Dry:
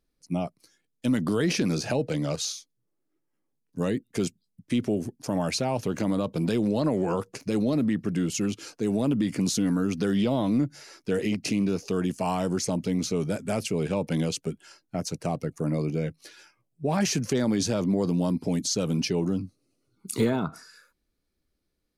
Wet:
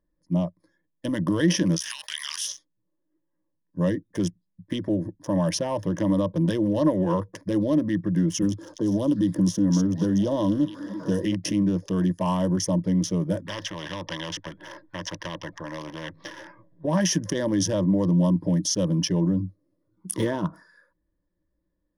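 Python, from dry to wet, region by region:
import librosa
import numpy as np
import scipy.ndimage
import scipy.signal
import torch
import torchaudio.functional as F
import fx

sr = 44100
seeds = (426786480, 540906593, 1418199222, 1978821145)

y = fx.spec_clip(x, sr, under_db=19, at=(1.75, 2.47), fade=0.02)
y = fx.bessel_highpass(y, sr, hz=2200.0, order=8, at=(1.75, 2.47), fade=0.02)
y = fx.pre_swell(y, sr, db_per_s=27.0, at=(1.75, 2.47), fade=0.02)
y = fx.chain(y, sr, fx.peak_eq(hz=2200.0, db=-13.5, octaves=0.78),
    fx.echo_stepped(ms=246, hz=5100.0, octaves=-0.7, feedback_pct=70, wet_db=-0.5),
    fx.band_squash(depth_pct=70), at=(8.42, 11.25))
y = fx.chain(y, sr, fx.lowpass(hz=3900.0, slope=24),
    fx.spectral_comp(ratio=4.0), at=(13.46, 16.85))
y = fx.wiener(y, sr, points=15)
y = fx.ripple_eq(y, sr, per_octave=1.2, db=14)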